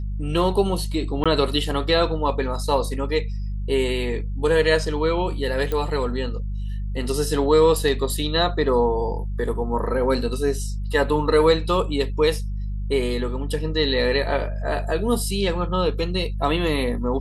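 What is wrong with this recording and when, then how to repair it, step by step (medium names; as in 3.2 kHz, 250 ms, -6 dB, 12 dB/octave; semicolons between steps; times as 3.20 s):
hum 50 Hz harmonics 4 -27 dBFS
1.24–1.26 s: dropout 16 ms
5.72 s: pop -13 dBFS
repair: de-click; de-hum 50 Hz, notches 4; interpolate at 1.24 s, 16 ms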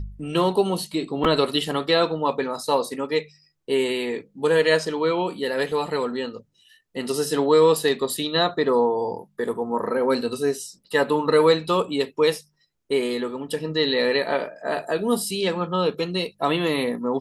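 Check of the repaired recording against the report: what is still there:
nothing left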